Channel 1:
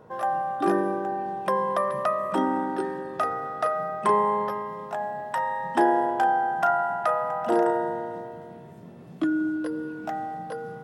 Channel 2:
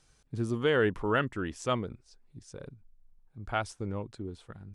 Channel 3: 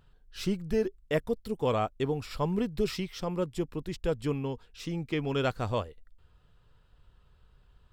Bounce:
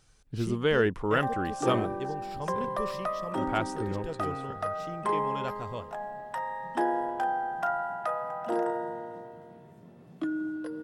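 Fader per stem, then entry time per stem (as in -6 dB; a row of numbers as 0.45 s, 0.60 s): -7.0 dB, +1.0 dB, -8.0 dB; 1.00 s, 0.00 s, 0.00 s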